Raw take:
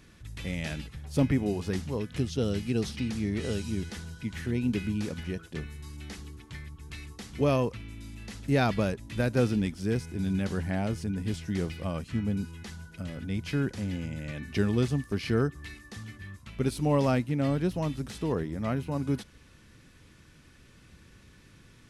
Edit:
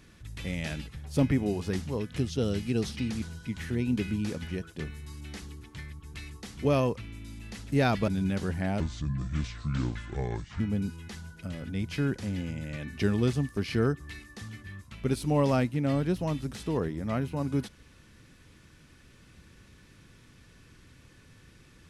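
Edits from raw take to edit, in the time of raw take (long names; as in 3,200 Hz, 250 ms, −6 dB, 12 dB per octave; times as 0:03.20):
0:03.22–0:03.98: remove
0:08.84–0:10.17: remove
0:10.89–0:12.15: play speed 70%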